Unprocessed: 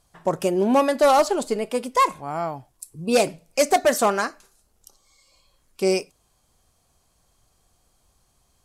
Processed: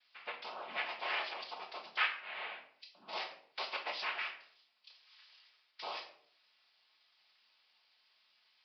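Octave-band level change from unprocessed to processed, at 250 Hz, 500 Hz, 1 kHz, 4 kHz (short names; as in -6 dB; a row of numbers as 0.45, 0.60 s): -38.0, -29.0, -20.0, -8.5 dB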